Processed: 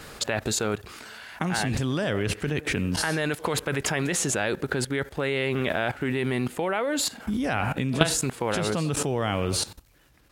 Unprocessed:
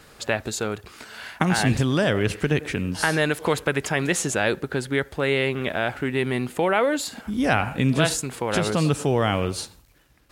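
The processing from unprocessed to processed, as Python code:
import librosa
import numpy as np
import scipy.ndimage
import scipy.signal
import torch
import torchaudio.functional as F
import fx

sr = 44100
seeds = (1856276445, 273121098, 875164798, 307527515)

y = fx.level_steps(x, sr, step_db=17)
y = y * 10.0 ** (8.0 / 20.0)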